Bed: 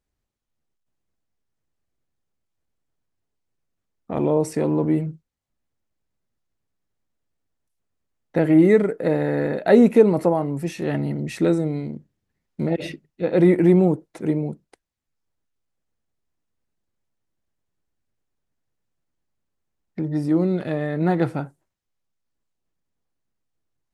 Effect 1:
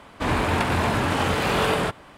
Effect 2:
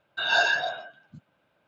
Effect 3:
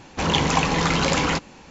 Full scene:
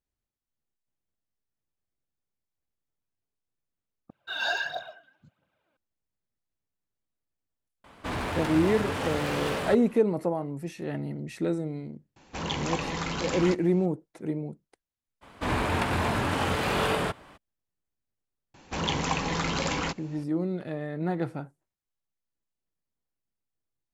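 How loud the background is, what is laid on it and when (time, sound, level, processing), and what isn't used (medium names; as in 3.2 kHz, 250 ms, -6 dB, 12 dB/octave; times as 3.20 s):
bed -9 dB
4.10 s: replace with 2 -8 dB + phaser 1.5 Hz, delay 4 ms, feedback 57%
7.84 s: add 1 -6 dB + hard clipper -22.5 dBFS
12.16 s: add 3 -11 dB
15.21 s: add 1 -4.5 dB, fades 0.02 s
18.54 s: add 3 -8 dB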